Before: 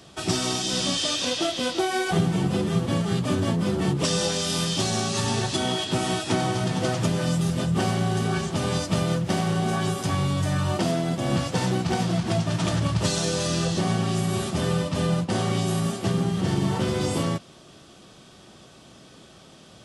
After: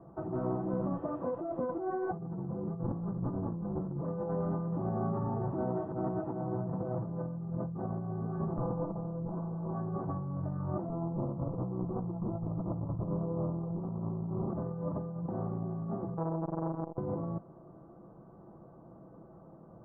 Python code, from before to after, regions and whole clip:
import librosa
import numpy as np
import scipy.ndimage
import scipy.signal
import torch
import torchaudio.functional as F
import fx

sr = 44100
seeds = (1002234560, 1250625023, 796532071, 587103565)

y = fx.chain(x, sr, fx.lower_of_two(delay_ms=0.66),
    fx.high_shelf(hz=2100.0, db=-10.5), at=(2.83, 3.92))
y = fx.chain(y, sr, fx.lower_of_two(delay_ms=6.0),
    fx.lowpass(hz=1300.0, slope=24), at=(8.58, 9.74))
y = fx.chain(y, sr, fx.lower_of_two(delay_ms=0.49),
    fx.steep_lowpass(hz=1300.0, slope=72), at=(10.89, 14.5))
y = fx.chain(y, sr, fx.robotise(hz=163.0),
    fx.transformer_sat(knee_hz=2300.0), at=(16.17, 16.98))
y = scipy.signal.sosfilt(scipy.signal.butter(6, 1100.0, 'lowpass', fs=sr, output='sos'), y)
y = y + 0.39 * np.pad(y, (int(6.0 * sr / 1000.0), 0))[:len(y)]
y = fx.over_compress(y, sr, threshold_db=-28.0, ratio=-1.0)
y = y * librosa.db_to_amplitude(-7.0)